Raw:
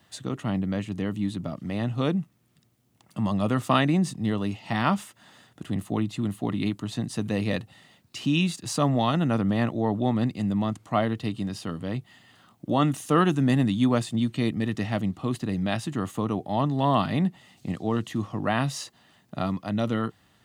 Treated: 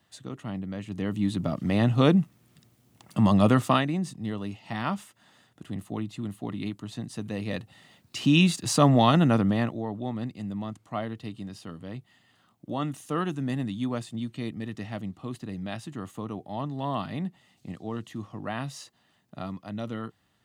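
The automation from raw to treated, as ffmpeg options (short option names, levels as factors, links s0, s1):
-af "volume=5.96,afade=t=in:st=0.78:d=0.87:silence=0.237137,afade=t=out:st=3.46:d=0.4:silence=0.266073,afade=t=in:st=7.45:d=0.97:silence=0.316228,afade=t=out:st=9.18:d=0.68:silence=0.251189"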